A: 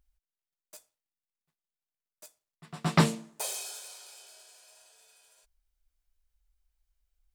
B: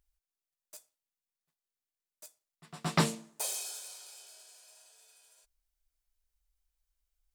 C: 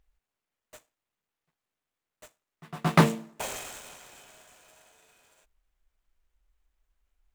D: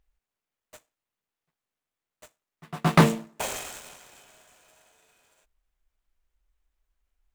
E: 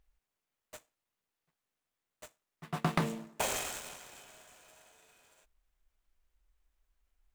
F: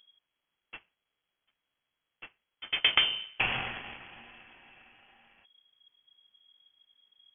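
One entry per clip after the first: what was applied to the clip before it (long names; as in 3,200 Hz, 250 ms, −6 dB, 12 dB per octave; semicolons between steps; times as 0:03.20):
bass and treble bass −3 dB, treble +4 dB; level −3.5 dB
running median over 9 samples; level +8.5 dB
leveller curve on the samples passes 1
downward compressor 12 to 1, threshold −27 dBFS, peak gain reduction 16 dB
voice inversion scrambler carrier 3,300 Hz; level +5.5 dB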